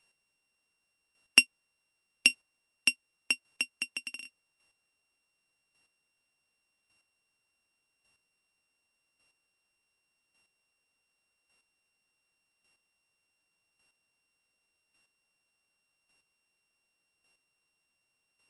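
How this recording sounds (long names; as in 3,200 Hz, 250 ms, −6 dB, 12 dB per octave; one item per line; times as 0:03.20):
a buzz of ramps at a fixed pitch in blocks of 16 samples
chopped level 0.87 Hz, depth 60%, duty 10%
MP3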